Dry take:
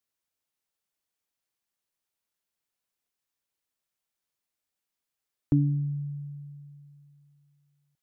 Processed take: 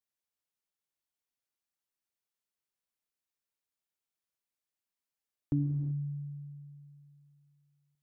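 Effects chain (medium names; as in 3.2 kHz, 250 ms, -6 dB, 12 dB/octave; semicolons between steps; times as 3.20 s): gated-style reverb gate 400 ms flat, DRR 7 dB; trim -7.5 dB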